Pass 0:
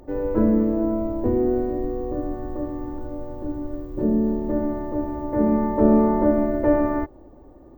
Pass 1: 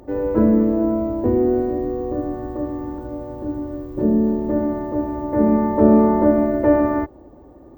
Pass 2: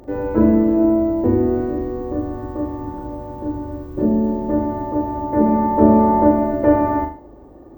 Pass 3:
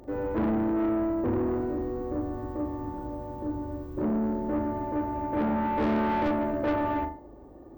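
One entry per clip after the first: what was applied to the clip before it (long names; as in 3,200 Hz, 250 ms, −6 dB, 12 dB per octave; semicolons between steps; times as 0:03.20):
high-pass filter 51 Hz; level +3.5 dB
flutter between parallel walls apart 6.8 metres, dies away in 0.41 s; level +1 dB
soft clipping −17 dBFS, distortion −8 dB; level −6 dB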